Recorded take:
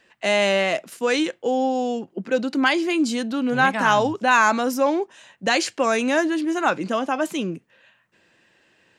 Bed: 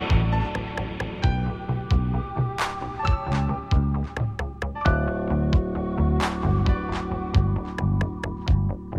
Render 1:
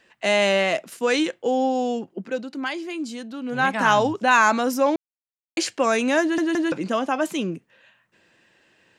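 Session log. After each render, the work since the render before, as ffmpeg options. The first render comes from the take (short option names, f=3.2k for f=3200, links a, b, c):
-filter_complex "[0:a]asplit=8[a][b][c][d][e][f][g][h];[a]atrim=end=2.45,asetpts=PTS-STARTPTS,afade=t=out:st=2.03:d=0.42:silence=0.354813[i];[b]atrim=start=2.45:end=3.41,asetpts=PTS-STARTPTS,volume=-9dB[j];[c]atrim=start=3.41:end=4.96,asetpts=PTS-STARTPTS,afade=t=in:d=0.42:silence=0.354813,afade=t=out:st=1.546:d=0.004:c=hsin[k];[d]atrim=start=4.96:end=5.57,asetpts=PTS-STARTPTS,volume=0[l];[e]atrim=start=5.57:end=6.382,asetpts=PTS-STARTPTS,afade=t=in:d=0.004:c=hsin[m];[f]atrim=start=6.208:end=6.382[n];[g]atrim=start=6.208:end=6.382[o];[h]atrim=start=6.718[p];[i][j][k][l][m]concat=n=5:v=0:a=1[q];[q][n]acrossfade=d=0.004:c1=hsin:c2=hsin[r];[r][o]acrossfade=d=0.004:c1=hsin:c2=hsin[s];[s][p]acrossfade=d=0.004:c1=hsin:c2=hsin"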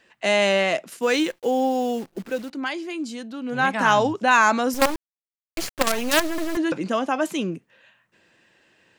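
-filter_complex "[0:a]asplit=3[a][b][c];[a]afade=t=out:st=1.01:d=0.02[d];[b]acrusher=bits=8:dc=4:mix=0:aa=0.000001,afade=t=in:st=1.01:d=0.02,afade=t=out:st=2.49:d=0.02[e];[c]afade=t=in:st=2.49:d=0.02[f];[d][e][f]amix=inputs=3:normalize=0,asettb=1/sr,asplit=3[g][h][i];[g]atrim=end=4.744[j];[h]atrim=start=4.74:end=6.57,asetpts=PTS-STARTPTS,afade=t=in:d=0.004:c=qsin,afade=t=out:st=1.826:d=0.004:c=qsin,acrusher=bits=3:dc=4:mix=0:aa=0.000001[k];[i]atrim=start=6.566[l];[j][k]acrossfade=d=0.004:c1=hsin:c2=qsin[m];[m][l]acrossfade=d=0.004:c1=qsin:c2=hsin"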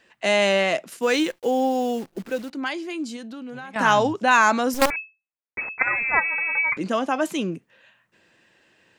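-filter_complex "[0:a]asettb=1/sr,asplit=3[a][b][c];[a]atrim=end=3.164[d];[b]atrim=start=3.16:end=3.76,asetpts=PTS-STARTPTS,afade=t=in:d=0.004:c=qsin,afade=t=out:st=0.596:d=0.004:c=qsin,acompressor=threshold=-32dB:ratio=16:attack=3.2:release=140:knee=1:detection=peak[e];[c]atrim=start=3.756[f];[d][e]acrossfade=d=0.004:c1=hsin:c2=qsin[g];[g][f]acrossfade=d=0.004:c1=qsin:c2=hsin,asettb=1/sr,asplit=3[h][i][j];[h]atrim=end=4.904[k];[i]atrim=start=4.9:end=6.77,asetpts=PTS-STARTPTS,afade=t=in:d=0.004:c=qsin,afade=t=out:st=1.866:d=0.004:c=qsin,lowpass=f=2.2k:t=q:w=0.5098,lowpass=f=2.2k:t=q:w=0.6013,lowpass=f=2.2k:t=q:w=0.9,lowpass=f=2.2k:t=q:w=2.563,afreqshift=-2600[l];[j]atrim=start=6.766[m];[k][l]acrossfade=d=0.004:c1=hsin:c2=qsin[n];[n][m]acrossfade=d=0.004:c1=qsin:c2=hsin"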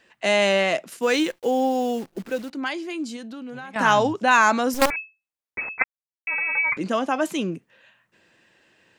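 -filter_complex "[0:a]asplit=3[a][b][c];[a]atrim=end=5.84,asetpts=PTS-STARTPTS,afade=t=out:st=5.836:d=0.004:c=hsin[d];[b]atrim=start=5.84:end=6.27,asetpts=PTS-STARTPTS,volume=0[e];[c]atrim=start=6.27,asetpts=PTS-STARTPTS,afade=t=in:d=0.004:c=hsin[f];[d][e][f]concat=n=3:v=0:a=1"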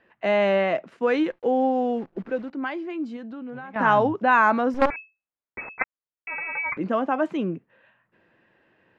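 -af "lowpass=1.7k"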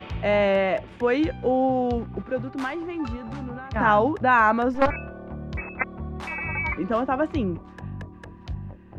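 -filter_complex "[1:a]volume=-12.5dB[a];[0:a][a]amix=inputs=2:normalize=0"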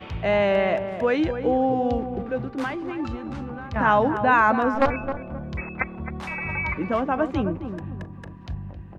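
-filter_complex "[0:a]asplit=2[a][b];[b]adelay=265,lowpass=f=1.2k:p=1,volume=-8dB,asplit=2[c][d];[d]adelay=265,lowpass=f=1.2k:p=1,volume=0.32,asplit=2[e][f];[f]adelay=265,lowpass=f=1.2k:p=1,volume=0.32,asplit=2[g][h];[h]adelay=265,lowpass=f=1.2k:p=1,volume=0.32[i];[a][c][e][g][i]amix=inputs=5:normalize=0"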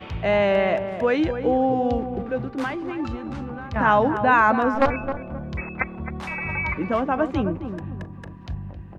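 -af "volume=1dB"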